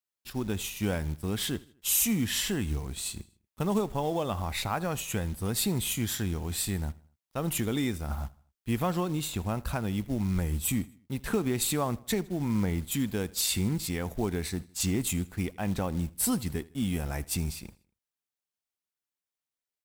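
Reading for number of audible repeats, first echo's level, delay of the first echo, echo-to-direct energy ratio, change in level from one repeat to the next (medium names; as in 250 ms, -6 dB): 2, -22.0 dB, 79 ms, -21.0 dB, -7.0 dB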